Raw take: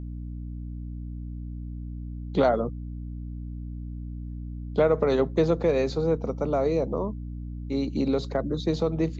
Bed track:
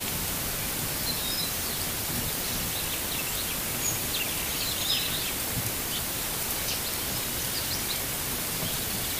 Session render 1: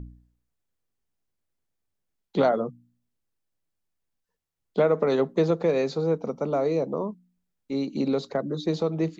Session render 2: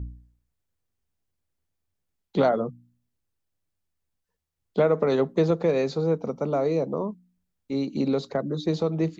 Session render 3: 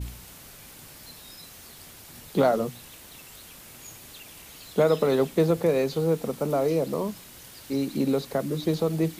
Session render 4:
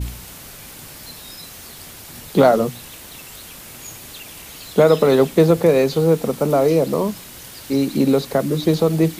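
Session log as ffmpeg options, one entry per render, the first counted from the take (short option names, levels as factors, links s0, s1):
-af "bandreject=f=60:t=h:w=4,bandreject=f=120:t=h:w=4,bandreject=f=180:t=h:w=4,bandreject=f=240:t=h:w=4,bandreject=f=300:t=h:w=4"
-af "equalizer=f=76:w=1.1:g=9"
-filter_complex "[1:a]volume=0.158[s0];[0:a][s0]amix=inputs=2:normalize=0"
-af "volume=2.66,alimiter=limit=0.794:level=0:latency=1"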